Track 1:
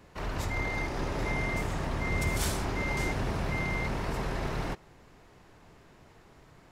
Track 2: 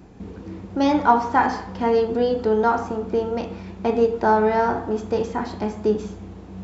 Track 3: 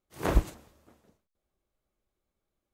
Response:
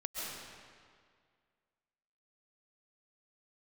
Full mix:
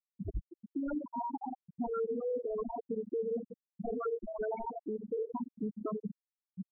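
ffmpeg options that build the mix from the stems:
-filter_complex "[0:a]volume=-16dB,asplit=2[link_01][link_02];[link_02]volume=-17dB[link_03];[1:a]equalizer=frequency=120:width_type=o:width=0.29:gain=3.5,volume=-1.5dB,asplit=2[link_04][link_05];[link_05]volume=-23.5dB[link_06];[2:a]acontrast=47,volume=-10.5dB[link_07];[link_01][link_04]amix=inputs=2:normalize=0,aeval=exprs='0.0944*(abs(mod(val(0)/0.0944+3,4)-2)-1)':channel_layout=same,acompressor=threshold=-27dB:ratio=12,volume=0dB[link_08];[link_03][link_06]amix=inputs=2:normalize=0,aecho=0:1:201|402|603|804|1005:1|0.37|0.137|0.0507|0.0187[link_09];[link_07][link_08][link_09]amix=inputs=3:normalize=0,afftfilt=real='re*gte(hypot(re,im),0.178)':imag='im*gte(hypot(re,im),0.178)':win_size=1024:overlap=0.75,alimiter=level_in=4dB:limit=-24dB:level=0:latency=1:release=256,volume=-4dB"

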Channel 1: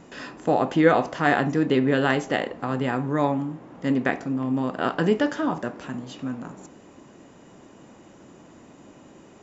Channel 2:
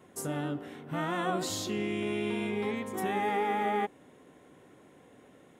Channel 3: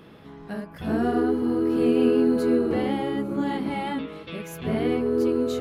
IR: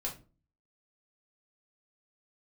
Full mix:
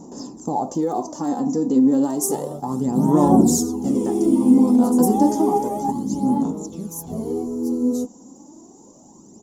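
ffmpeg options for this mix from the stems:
-filter_complex "[0:a]alimiter=limit=-12.5dB:level=0:latency=1:release=113,volume=0dB,asplit=2[link_01][link_02];[1:a]aecho=1:1:5.2:0.82,adelay=2050,volume=2.5dB[link_03];[2:a]acrossover=split=190[link_04][link_05];[link_05]acompressor=threshold=-38dB:ratio=1.5[link_06];[link_04][link_06]amix=inputs=2:normalize=0,adelay=2450,volume=1dB[link_07];[link_02]apad=whole_len=337322[link_08];[link_03][link_08]sidechaingate=range=-13dB:threshold=-38dB:ratio=16:detection=peak[link_09];[link_01][link_09][link_07]amix=inputs=3:normalize=0,lowshelf=frequency=290:gain=-6.5,aphaser=in_gain=1:out_gain=1:delay=4.1:decay=0.56:speed=0.31:type=sinusoidal,firequalizer=gain_entry='entry(120,0);entry(210,9);entry(600,-4);entry(870,3);entry(1500,-23);entry(2400,-27);entry(5700,10)':delay=0.05:min_phase=1"

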